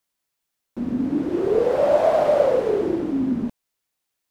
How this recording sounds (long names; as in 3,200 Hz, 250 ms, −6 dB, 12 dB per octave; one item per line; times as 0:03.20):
background noise floor −80 dBFS
spectral slope −4.0 dB per octave